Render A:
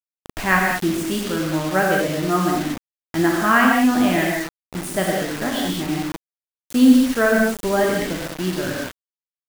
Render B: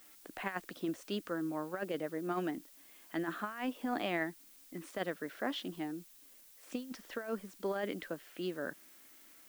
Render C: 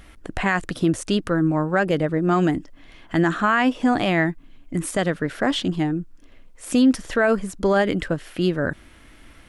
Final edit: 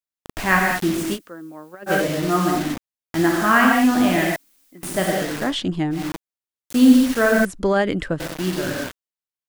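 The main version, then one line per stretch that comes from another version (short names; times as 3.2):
A
1.16–1.89 from B, crossfade 0.06 s
4.36–4.83 from B
5.47–5.98 from C, crossfade 0.16 s
7.45–8.2 from C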